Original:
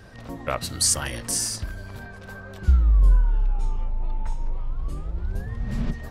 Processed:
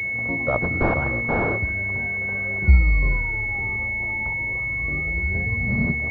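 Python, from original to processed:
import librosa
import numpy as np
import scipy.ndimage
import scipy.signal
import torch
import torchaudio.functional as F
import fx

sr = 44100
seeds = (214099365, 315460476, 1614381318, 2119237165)

y = scipy.signal.sosfilt(scipy.signal.butter(4, 64.0, 'highpass', fs=sr, output='sos'), x)
y = fx.pwm(y, sr, carrier_hz=2200.0)
y = F.gain(torch.from_numpy(y), 6.5).numpy()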